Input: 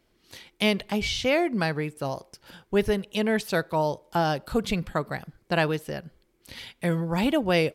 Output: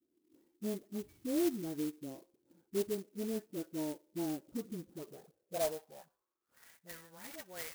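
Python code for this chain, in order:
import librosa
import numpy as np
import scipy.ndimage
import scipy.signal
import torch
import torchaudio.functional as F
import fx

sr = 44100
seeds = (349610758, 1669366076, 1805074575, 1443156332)

y = fx.high_shelf(x, sr, hz=3200.0, db=-8.5)
y = fx.dispersion(y, sr, late='highs', ms=65.0, hz=770.0)
y = fx.filter_sweep_bandpass(y, sr, from_hz=310.0, to_hz=1900.0, start_s=4.87, end_s=6.87, q=4.6)
y = fx.hpss(y, sr, part='percussive', gain_db=-8)
y = fx.clock_jitter(y, sr, seeds[0], jitter_ms=0.096)
y = y * 10.0 ** (-1.5 / 20.0)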